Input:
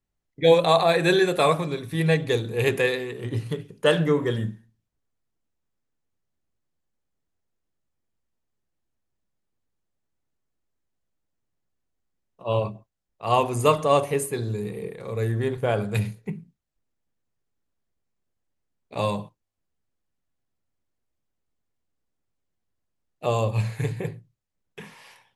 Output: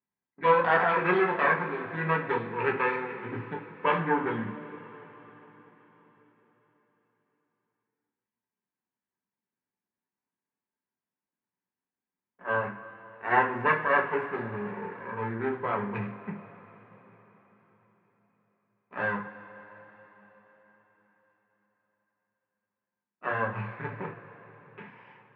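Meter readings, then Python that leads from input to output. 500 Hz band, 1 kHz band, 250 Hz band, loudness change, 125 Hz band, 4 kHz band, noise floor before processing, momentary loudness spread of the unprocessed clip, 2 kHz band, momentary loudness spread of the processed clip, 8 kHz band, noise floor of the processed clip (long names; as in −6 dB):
−7.5 dB, −0.5 dB, −6.0 dB, −4.5 dB, −12.0 dB, −16.0 dB, −79 dBFS, 15 LU, +2.5 dB, 20 LU, below −40 dB, below −85 dBFS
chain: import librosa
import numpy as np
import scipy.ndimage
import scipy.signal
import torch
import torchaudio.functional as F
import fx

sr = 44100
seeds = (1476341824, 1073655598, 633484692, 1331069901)

y = fx.lower_of_two(x, sr, delay_ms=0.36)
y = fx.cabinet(y, sr, low_hz=250.0, low_slope=12, high_hz=2100.0, hz=(430.0, 620.0, 1000.0, 1600.0), db=(-6, -9, 8, 7))
y = fx.rev_double_slope(y, sr, seeds[0], early_s=0.22, late_s=4.7, knee_db=-22, drr_db=0.0)
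y = F.gain(torch.from_numpy(y), -3.5).numpy()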